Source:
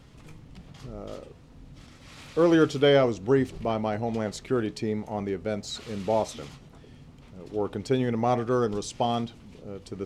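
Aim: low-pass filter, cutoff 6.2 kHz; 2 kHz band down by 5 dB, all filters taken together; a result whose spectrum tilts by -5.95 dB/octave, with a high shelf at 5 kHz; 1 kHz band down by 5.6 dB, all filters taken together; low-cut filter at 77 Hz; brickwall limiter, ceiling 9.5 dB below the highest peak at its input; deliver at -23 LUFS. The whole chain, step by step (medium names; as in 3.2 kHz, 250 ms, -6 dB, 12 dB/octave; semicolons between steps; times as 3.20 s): high-pass 77 Hz; low-pass 6.2 kHz; peaking EQ 1 kHz -8 dB; peaking EQ 2 kHz -4 dB; treble shelf 5 kHz +4.5 dB; trim +8.5 dB; peak limiter -11 dBFS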